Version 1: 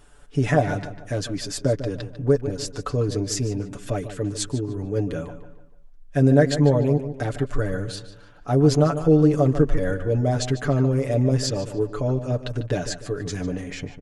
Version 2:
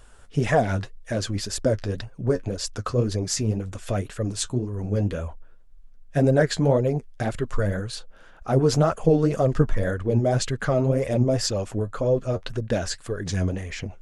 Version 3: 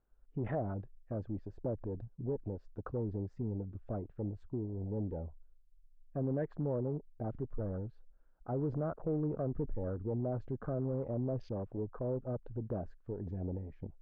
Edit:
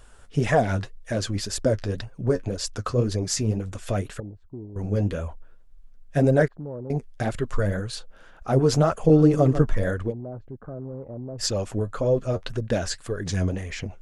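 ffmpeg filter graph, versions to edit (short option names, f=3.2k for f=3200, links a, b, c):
-filter_complex "[2:a]asplit=3[a][b][c];[1:a]asplit=5[d][e][f][g][h];[d]atrim=end=4.202[i];[a]atrim=start=4.198:end=4.762[j];[e]atrim=start=4.758:end=6.482[k];[b]atrim=start=6.478:end=6.902[l];[f]atrim=start=6.898:end=9.102[m];[0:a]atrim=start=9.098:end=9.602[n];[g]atrim=start=9.598:end=10.13[o];[c]atrim=start=10.07:end=11.44[p];[h]atrim=start=11.38[q];[i][j]acrossfade=d=0.004:c1=hsin:c2=hsin[r];[r][k]acrossfade=d=0.004:c1=hsin:c2=hsin[s];[s][l]acrossfade=d=0.004:c1=hsin:c2=hsin[t];[t][m]acrossfade=d=0.004:c1=hsin:c2=hsin[u];[u][n]acrossfade=d=0.004:c1=hsin:c2=hsin[v];[v][o]acrossfade=d=0.004:c1=hsin:c2=hsin[w];[w][p]acrossfade=d=0.06:c1=tri:c2=tri[x];[x][q]acrossfade=d=0.06:c1=tri:c2=tri"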